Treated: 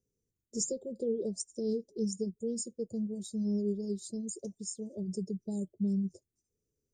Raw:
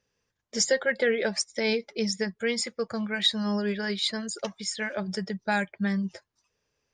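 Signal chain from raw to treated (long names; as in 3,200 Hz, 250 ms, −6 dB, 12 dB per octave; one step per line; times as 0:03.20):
Chebyshev band-stop filter 400–7,300 Hz, order 3
level −2 dB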